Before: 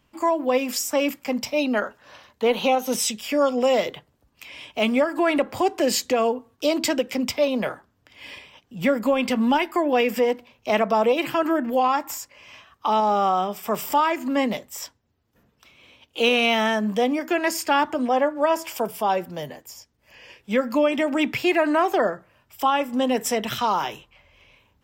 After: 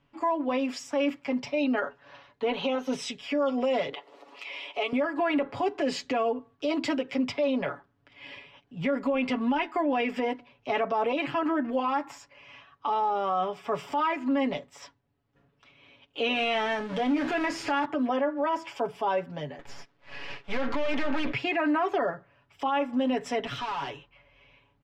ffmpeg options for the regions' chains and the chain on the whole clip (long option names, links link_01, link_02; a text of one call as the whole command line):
ffmpeg -i in.wav -filter_complex "[0:a]asettb=1/sr,asplit=3[link_01][link_02][link_03];[link_01]atrim=end=3.934[link_04];[link_02]atrim=start=3.93:end=4.93,asetpts=PTS-STARTPTS,afade=type=in:duration=0.004:curve=qsin,afade=type=out:start_time=0.996:duration=0.004:curve=qsin,highpass=frequency=380:width=0.5412,highpass=frequency=380:width=1.3066,bandreject=frequency=1600:width=5,acompressor=mode=upward:threshold=-25dB:ratio=2.5:attack=3.2:release=140:knee=2.83:detection=peak[link_05];[link_03]atrim=start=4.926[link_06];[link_04][link_05]acrossfade=duration=0.004:curve1=hsin:curve2=qsin[link_07];[link_07][link_06]acrossfade=duration=0.004:curve1=qsin:curve2=hsin,asettb=1/sr,asplit=3[link_08][link_09][link_10];[link_08]atrim=end=16.354[link_11];[link_09]atrim=start=16.35:end=17.85,asetpts=PTS-STARTPTS,afade=type=in:duration=0.004:curve=qsin,afade=type=out:start_time=1.496:duration=0.004:curve=qsin,aeval=exprs='val(0)+0.5*0.0562*sgn(val(0))':channel_layout=same,acompressor=threshold=-22dB:ratio=2:attack=3.2:release=140:knee=1:detection=peak,asplit=2[link_12][link_13];[link_13]adelay=28,volume=-11dB[link_14];[link_12][link_14]amix=inputs=2:normalize=0,atrim=end_sample=66150[link_15];[link_10]atrim=start=17.846[link_16];[link_11][link_15]acrossfade=duration=0.004:curve1=hsin:curve2=qsin[link_17];[link_17][link_16]acrossfade=duration=0.004:curve1=qsin:curve2=hsin,asettb=1/sr,asplit=3[link_18][link_19][link_20];[link_18]atrim=end=19.594[link_21];[link_19]atrim=start=19.59:end=21.33,asetpts=PTS-STARTPTS,afade=type=in:duration=0.004:curve=qsin,afade=type=out:start_time=1.736:duration=0.004:curve=qsin,asplit=2[link_22][link_23];[link_23]highpass=frequency=720:poles=1,volume=24dB,asoftclip=type=tanh:threshold=-10dB[link_24];[link_22][link_24]amix=inputs=2:normalize=0,lowpass=frequency=2900:poles=1,volume=-6dB,aeval=exprs='max(val(0),0)':channel_layout=same[link_25];[link_20]atrim=start=21.326[link_26];[link_21][link_25]acrossfade=duration=0.004:curve1=hsin:curve2=qsin[link_27];[link_27][link_26]acrossfade=duration=0.004:curve1=qsin:curve2=hsin,asettb=1/sr,asplit=3[link_28][link_29][link_30];[link_28]atrim=end=23.464[link_31];[link_29]atrim=start=23.46:end=23.9,asetpts=PTS-STARTPTS,afade=type=in:duration=0.004:curve=qsin,afade=type=out:start_time=0.436:duration=0.004:curve=qsin,highshelf=frequency=6500:gain=7,asoftclip=type=hard:threshold=-27dB[link_32];[link_30]atrim=start=23.896[link_33];[link_31][link_32]acrossfade=duration=0.004:curve1=hsin:curve2=qsin[link_34];[link_34][link_33]acrossfade=duration=0.004:curve1=qsin:curve2=hsin,lowpass=3300,aecho=1:1:7.1:0.79,alimiter=limit=-14dB:level=0:latency=1:release=20,volume=-5dB" out.wav